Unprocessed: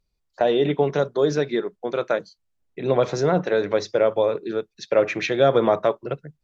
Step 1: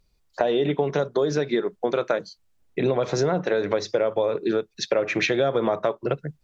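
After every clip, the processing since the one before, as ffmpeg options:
-filter_complex "[0:a]asplit=2[a][b];[b]alimiter=limit=-17dB:level=0:latency=1:release=259,volume=2dB[c];[a][c]amix=inputs=2:normalize=0,acompressor=threshold=-21dB:ratio=5,volume=1.5dB"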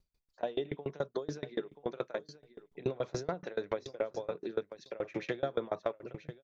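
-af "aecho=1:1:982|1964:0.178|0.0267,aeval=exprs='val(0)*pow(10,-28*if(lt(mod(7*n/s,1),2*abs(7)/1000),1-mod(7*n/s,1)/(2*abs(7)/1000),(mod(7*n/s,1)-2*abs(7)/1000)/(1-2*abs(7)/1000))/20)':c=same,volume=-6dB"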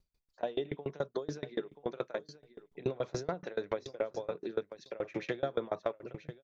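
-af anull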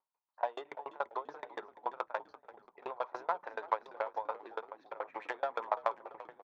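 -filter_complex "[0:a]adynamicsmooth=sensitivity=2.5:basefreq=1.3k,highpass=f=930:t=q:w=4.9,asplit=5[a][b][c][d][e];[b]adelay=339,afreqshift=-70,volume=-17dB[f];[c]adelay=678,afreqshift=-140,volume=-24.1dB[g];[d]adelay=1017,afreqshift=-210,volume=-31.3dB[h];[e]adelay=1356,afreqshift=-280,volume=-38.4dB[i];[a][f][g][h][i]amix=inputs=5:normalize=0,volume=1.5dB"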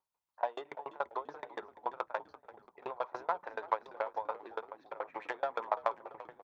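-af "equalizer=f=76:w=0.65:g=10"

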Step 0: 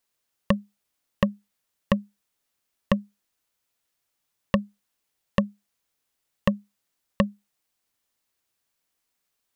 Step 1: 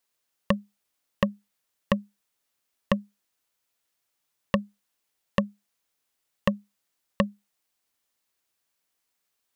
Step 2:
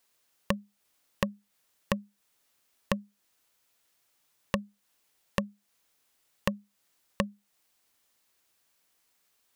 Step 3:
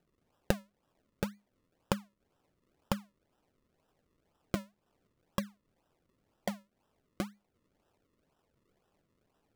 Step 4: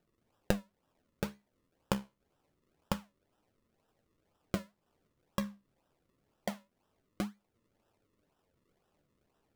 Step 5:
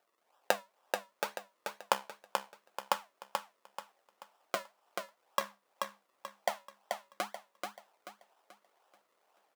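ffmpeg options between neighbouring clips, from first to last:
-af "lowshelf=f=210:g=-5"
-af "acompressor=threshold=-38dB:ratio=2.5,volume=6.5dB"
-af "acrusher=samples=39:mix=1:aa=0.000001:lfo=1:lforange=39:lforate=2,volume=-4dB"
-af "flanger=delay=8.8:depth=6.3:regen=66:speed=0.26:shape=sinusoidal,volume=3.5dB"
-filter_complex "[0:a]highpass=f=760:t=q:w=1.7,asplit=2[a][b];[b]aecho=0:1:434|868|1302|1736|2170:0.596|0.214|0.0772|0.0278|0.01[c];[a][c]amix=inputs=2:normalize=0,volume=4.5dB"

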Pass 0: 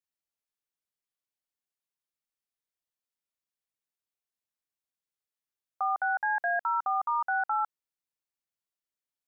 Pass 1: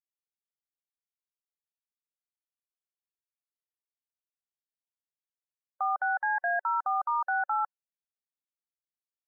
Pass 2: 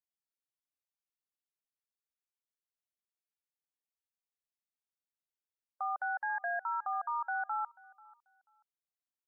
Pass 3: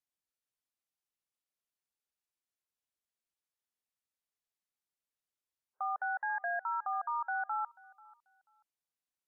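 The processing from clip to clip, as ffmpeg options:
-af "afftdn=nr=21:nf=-44"
-af "aecho=1:1:488|976:0.0668|0.0147,volume=-6.5dB"
-ar 32000 -c:a wmav2 -b:a 128k

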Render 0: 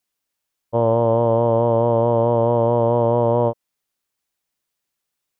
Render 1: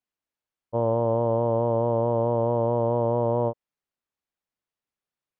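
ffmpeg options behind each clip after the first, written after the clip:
-af "lowpass=f=1.9k:p=1,volume=-6dB"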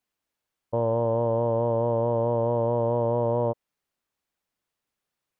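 -af "alimiter=limit=-21.5dB:level=0:latency=1:release=16,volume=6.5dB"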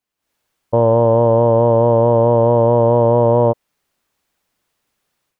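-af "dynaudnorm=f=160:g=3:m=13dB"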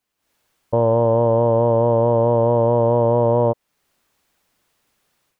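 -af "alimiter=limit=-11dB:level=0:latency=1:release=411,volume=4dB"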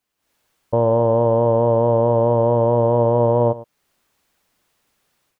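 -af "aecho=1:1:109:0.141"

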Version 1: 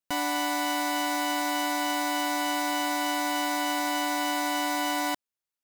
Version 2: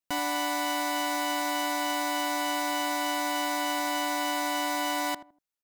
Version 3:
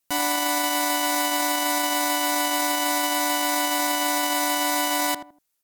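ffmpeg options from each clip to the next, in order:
-filter_complex "[0:a]asplit=2[a][b];[b]adelay=80,lowpass=f=820:p=1,volume=-12dB,asplit=2[c][d];[d]adelay=80,lowpass=f=820:p=1,volume=0.32,asplit=2[e][f];[f]adelay=80,lowpass=f=820:p=1,volume=0.32[g];[a][c][e][g]amix=inputs=4:normalize=0,volume=-1dB"
-af "equalizer=f=14k:t=o:w=1.7:g=8.5,alimiter=limit=-22dB:level=0:latency=1:release=12,volume=9dB"

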